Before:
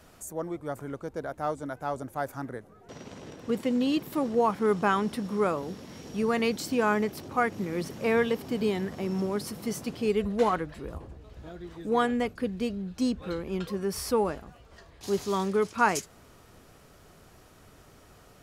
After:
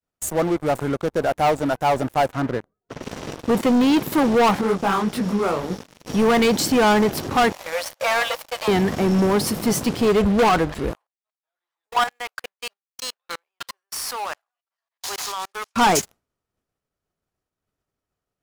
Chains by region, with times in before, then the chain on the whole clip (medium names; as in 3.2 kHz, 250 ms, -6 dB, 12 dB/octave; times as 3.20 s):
2.26–3.03 s: low-pass 2 kHz 6 dB/octave + band-stop 840 Hz, Q 8.1
4.61–6.07 s: compression 1.5:1, threshold -35 dBFS + detune thickener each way 58 cents
7.52–8.68 s: hard clipper -24 dBFS + brick-wall FIR high-pass 490 Hz
10.93–15.75 s: companding laws mixed up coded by mu + high-pass 770 Hz 24 dB/octave + level held to a coarse grid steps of 14 dB
whole clip: expander -43 dBFS; dynamic bell 800 Hz, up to +6 dB, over -43 dBFS, Q 2.4; waveshaping leveller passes 5; trim -4 dB